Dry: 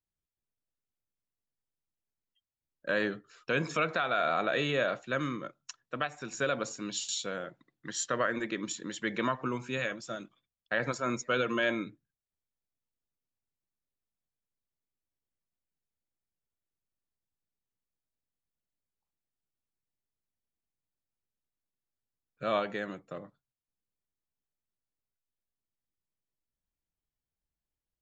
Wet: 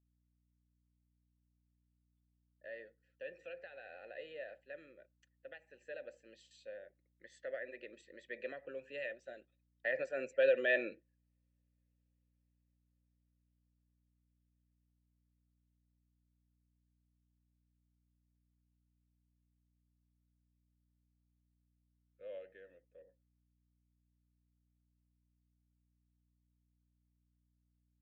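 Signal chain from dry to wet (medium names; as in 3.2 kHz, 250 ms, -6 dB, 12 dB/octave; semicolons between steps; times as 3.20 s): Doppler pass-by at 11.59 s, 28 m/s, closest 18 m; vowel filter e; hum 60 Hz, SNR 32 dB; trim +12 dB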